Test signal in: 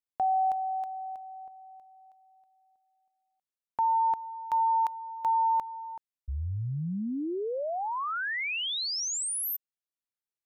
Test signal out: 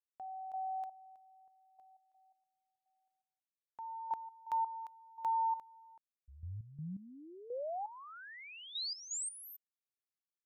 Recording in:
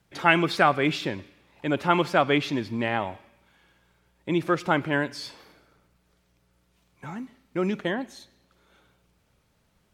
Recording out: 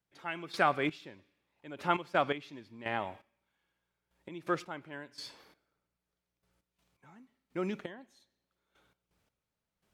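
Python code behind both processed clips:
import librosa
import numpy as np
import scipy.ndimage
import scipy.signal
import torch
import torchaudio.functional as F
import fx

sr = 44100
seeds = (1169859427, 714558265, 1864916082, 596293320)

y = fx.low_shelf(x, sr, hz=220.0, db=-4.5)
y = fx.step_gate(y, sr, bpm=84, pattern='...xx.....x.x', floor_db=-12.0, edge_ms=4.5)
y = y * librosa.db_to_amplitude(-7.0)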